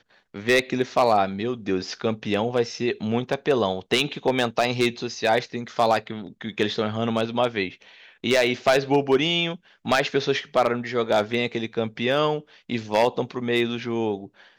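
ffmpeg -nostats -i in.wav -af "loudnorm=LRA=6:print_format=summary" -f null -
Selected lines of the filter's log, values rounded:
Input Integrated:    -24.0 LUFS
Input True Peak:      -9.6 dBTP
Input LRA:             2.4 LU
Input Threshold:     -34.2 LUFS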